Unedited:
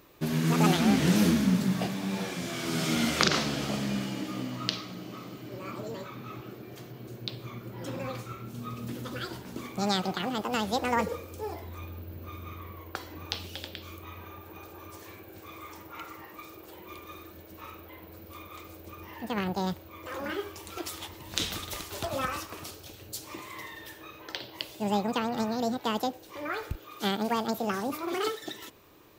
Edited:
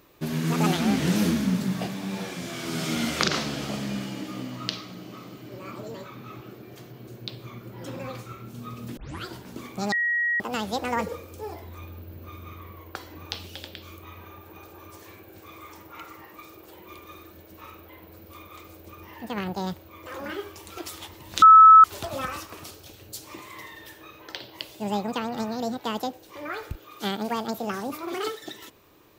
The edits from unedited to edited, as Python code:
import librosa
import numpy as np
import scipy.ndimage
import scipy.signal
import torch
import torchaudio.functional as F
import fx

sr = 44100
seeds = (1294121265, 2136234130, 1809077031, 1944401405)

y = fx.edit(x, sr, fx.tape_start(start_s=8.97, length_s=0.27),
    fx.bleep(start_s=9.92, length_s=0.48, hz=1900.0, db=-21.5),
    fx.bleep(start_s=21.42, length_s=0.42, hz=1300.0, db=-7.0), tone=tone)